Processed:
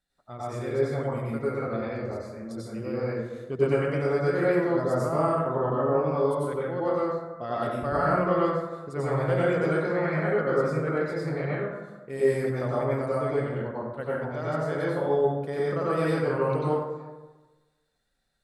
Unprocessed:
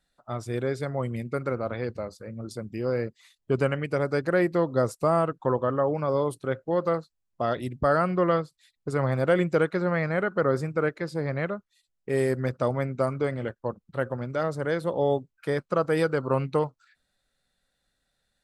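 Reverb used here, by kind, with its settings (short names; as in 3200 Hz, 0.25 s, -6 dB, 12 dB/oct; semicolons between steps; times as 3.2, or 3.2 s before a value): plate-style reverb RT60 1.2 s, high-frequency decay 0.45×, pre-delay 80 ms, DRR -8 dB; gain -9 dB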